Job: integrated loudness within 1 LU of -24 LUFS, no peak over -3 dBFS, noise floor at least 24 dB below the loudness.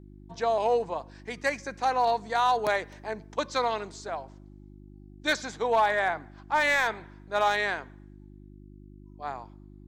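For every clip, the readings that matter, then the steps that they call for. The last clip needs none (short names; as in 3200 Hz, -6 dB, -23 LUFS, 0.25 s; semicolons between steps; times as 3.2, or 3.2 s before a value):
clipped 0.2%; flat tops at -16.0 dBFS; hum 50 Hz; harmonics up to 350 Hz; hum level -47 dBFS; loudness -28.0 LUFS; peak -16.0 dBFS; loudness target -24.0 LUFS
-> clip repair -16 dBFS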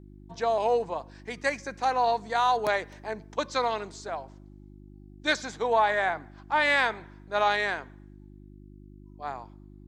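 clipped 0.0%; hum 50 Hz; harmonics up to 350 Hz; hum level -47 dBFS
-> de-hum 50 Hz, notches 7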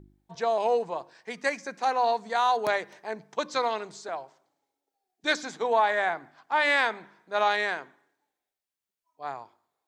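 hum none; loudness -27.5 LUFS; peak -10.5 dBFS; loudness target -24.0 LUFS
-> gain +3.5 dB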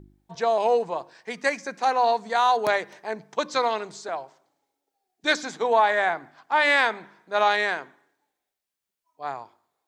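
loudness -24.0 LUFS; peak -7.0 dBFS; noise floor -85 dBFS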